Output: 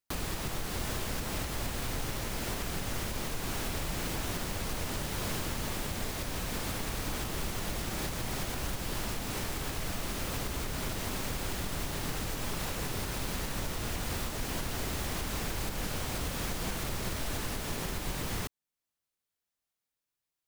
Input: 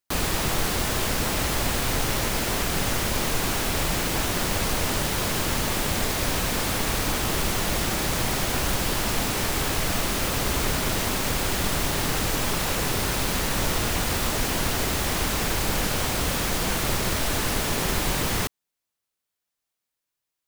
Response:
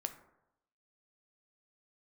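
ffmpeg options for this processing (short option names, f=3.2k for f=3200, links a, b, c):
-af "lowshelf=f=250:g=4,alimiter=limit=-19dB:level=0:latency=1:release=481,volume=-5dB"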